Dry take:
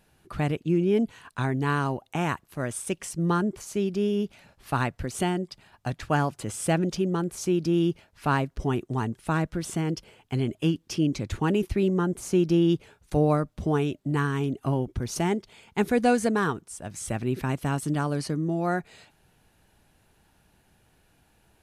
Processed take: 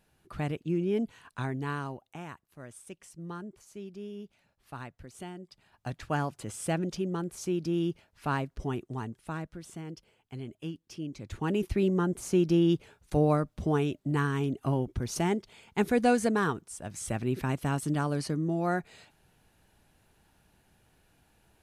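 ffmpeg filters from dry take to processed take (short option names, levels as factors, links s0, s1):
-af "volume=5.62,afade=t=out:st=1.4:d=0.86:silence=0.316228,afade=t=in:st=5.38:d=0.53:silence=0.316228,afade=t=out:st=8.6:d=1:silence=0.421697,afade=t=in:st=11.16:d=0.56:silence=0.281838"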